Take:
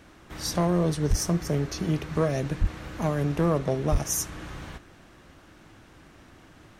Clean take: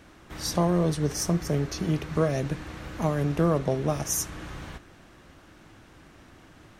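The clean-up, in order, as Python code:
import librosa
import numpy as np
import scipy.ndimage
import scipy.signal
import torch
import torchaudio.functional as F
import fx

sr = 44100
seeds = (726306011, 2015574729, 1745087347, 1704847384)

y = fx.fix_declip(x, sr, threshold_db=-15.5)
y = fx.highpass(y, sr, hz=140.0, slope=24, at=(1.09, 1.21), fade=0.02)
y = fx.highpass(y, sr, hz=140.0, slope=24, at=(2.6, 2.72), fade=0.02)
y = fx.highpass(y, sr, hz=140.0, slope=24, at=(3.91, 4.03), fade=0.02)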